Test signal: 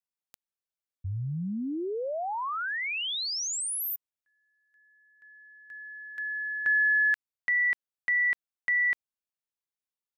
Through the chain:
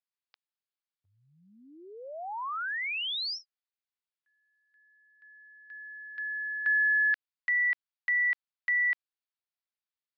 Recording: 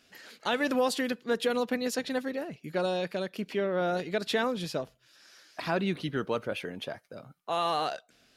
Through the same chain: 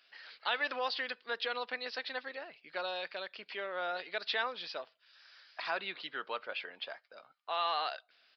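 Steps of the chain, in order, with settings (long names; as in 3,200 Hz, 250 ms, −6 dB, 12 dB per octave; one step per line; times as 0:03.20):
high-pass filter 910 Hz 12 dB per octave
downsampling to 11,025 Hz
level −1 dB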